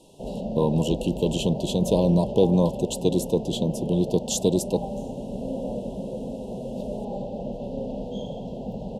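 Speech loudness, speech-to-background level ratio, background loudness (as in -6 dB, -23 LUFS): -24.0 LUFS, 8.5 dB, -32.5 LUFS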